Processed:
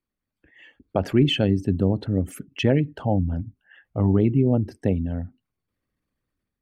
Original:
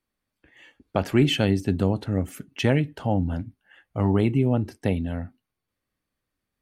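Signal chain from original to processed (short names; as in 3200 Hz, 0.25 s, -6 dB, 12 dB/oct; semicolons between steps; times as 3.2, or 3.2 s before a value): formant sharpening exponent 1.5; AGC gain up to 6 dB; gain -3.5 dB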